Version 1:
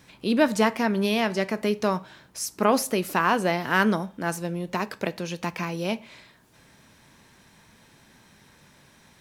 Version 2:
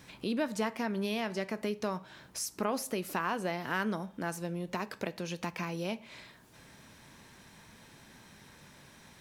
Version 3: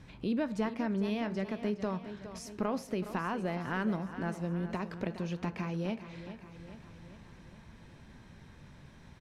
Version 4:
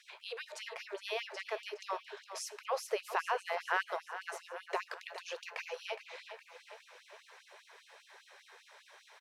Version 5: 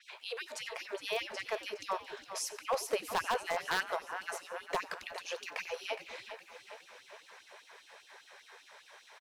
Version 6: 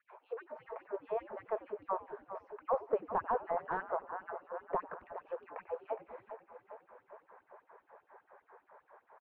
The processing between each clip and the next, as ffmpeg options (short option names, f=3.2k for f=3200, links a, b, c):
-af "acompressor=threshold=-38dB:ratio=2"
-filter_complex "[0:a]aemphasis=mode=reproduction:type=bsi,asplit=2[a][b];[b]aecho=0:1:414|828|1242|1656|2070|2484:0.251|0.146|0.0845|0.049|0.0284|0.0165[c];[a][c]amix=inputs=2:normalize=0,volume=-3dB"
-af "afftfilt=real='re*gte(b*sr/1024,360*pow(2700/360,0.5+0.5*sin(2*PI*5*pts/sr)))':imag='im*gte(b*sr/1024,360*pow(2700/360,0.5+0.5*sin(2*PI*5*pts/sr)))':win_size=1024:overlap=0.75,volume=5dB"
-filter_complex "[0:a]asplit=5[a][b][c][d][e];[b]adelay=92,afreqshift=-110,volume=-19.5dB[f];[c]adelay=184,afreqshift=-220,volume=-25dB[g];[d]adelay=276,afreqshift=-330,volume=-30.5dB[h];[e]adelay=368,afreqshift=-440,volume=-36dB[i];[a][f][g][h][i]amix=inputs=5:normalize=0,aeval=exprs='0.0562*(abs(mod(val(0)/0.0562+3,4)-2)-1)':c=same,adynamicequalizer=threshold=0.00141:dfrequency=6600:dqfactor=0.7:tfrequency=6600:tqfactor=0.7:attack=5:release=100:ratio=0.375:range=2.5:mode=boostabove:tftype=highshelf,volume=2.5dB"
-af "lowpass=f=1.2k:w=0.5412,lowpass=f=1.2k:w=1.3066,volume=1dB"